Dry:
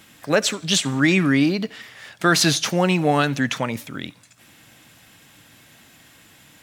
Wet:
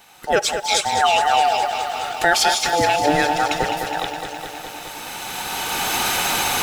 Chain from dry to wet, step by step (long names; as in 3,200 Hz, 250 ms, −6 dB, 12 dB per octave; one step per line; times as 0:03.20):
frequency inversion band by band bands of 1,000 Hz
camcorder AGC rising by 13 dB per second
feedback echo at a low word length 208 ms, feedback 80%, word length 7 bits, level −8.5 dB